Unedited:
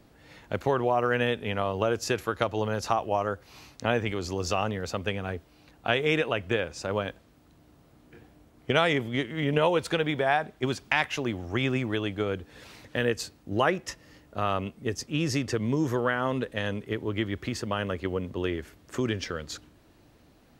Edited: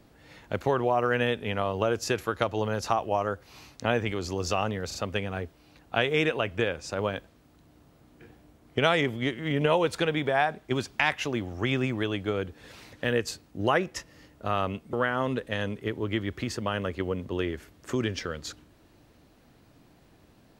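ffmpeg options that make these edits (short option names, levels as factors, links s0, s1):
-filter_complex "[0:a]asplit=4[s0][s1][s2][s3];[s0]atrim=end=4.912[s4];[s1]atrim=start=4.868:end=4.912[s5];[s2]atrim=start=4.868:end=14.852[s6];[s3]atrim=start=15.978[s7];[s4][s5]acrossfade=d=0.004:c1=hsin:c2=hsin[s8];[s8][s6]acrossfade=d=0.004:c1=hsin:c2=hsin[s9];[s9][s7]acrossfade=d=0.004:c1=hsin:c2=hsin"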